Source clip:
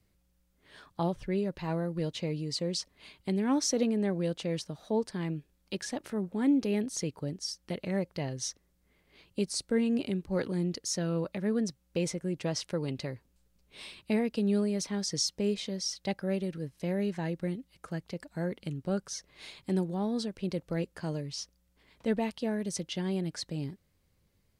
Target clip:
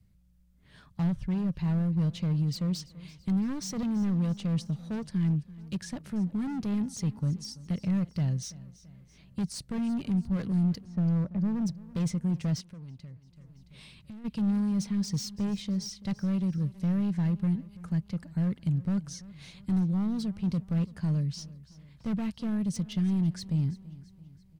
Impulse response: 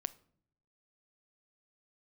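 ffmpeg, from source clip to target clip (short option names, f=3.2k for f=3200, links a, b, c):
-filter_complex "[0:a]asettb=1/sr,asplit=3[a][b][c];[a]atrim=end=10.844[d];[b]atrim=start=10.84:end=11.62,asetpts=PTS-STARTPTS,afade=t=in:d=0.004:c=qsin,afade=t=out:st=0.776:d=0.004:c=qsin,lowpass=1.1k[e];[c]atrim=start=11.616[f];[d][e]acrossfade=d=0.004:c1=hsin:c2=qsin[g];[g][f]acrossfade=d=0.004:c1=qsin:c2=hsin,asoftclip=type=hard:threshold=-31dB,lowshelf=f=250:t=q:w=1.5:g=12,aecho=1:1:335|670|1005|1340:0.112|0.0561|0.0281|0.014,asplit=3[h][i][j];[h]afade=t=out:st=12.6:d=0.02[k];[i]acompressor=threshold=-44dB:ratio=3,afade=t=in:st=12.6:d=0.02,afade=t=out:st=14.24:d=0.02[l];[j]afade=t=in:st=14.24:d=0.02[m];[k][l][m]amix=inputs=3:normalize=0,volume=-4dB"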